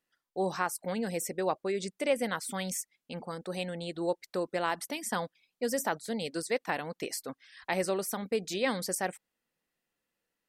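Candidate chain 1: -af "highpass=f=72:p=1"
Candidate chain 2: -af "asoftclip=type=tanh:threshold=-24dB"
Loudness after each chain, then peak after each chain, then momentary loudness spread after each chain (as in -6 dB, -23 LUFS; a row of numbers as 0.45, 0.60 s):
-33.5, -35.0 LUFS; -15.0, -24.0 dBFS; 8, 7 LU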